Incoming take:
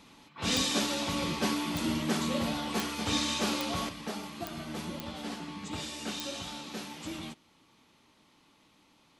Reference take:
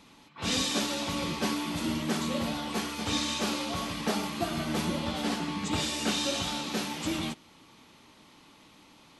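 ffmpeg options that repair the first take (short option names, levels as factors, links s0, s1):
-af "adeclick=t=4,asetnsamples=n=441:p=0,asendcmd='3.89 volume volume 8dB',volume=1"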